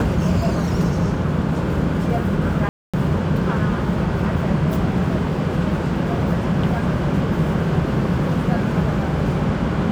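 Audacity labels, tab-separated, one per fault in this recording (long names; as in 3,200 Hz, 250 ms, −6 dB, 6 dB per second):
2.690000	2.940000	drop-out 246 ms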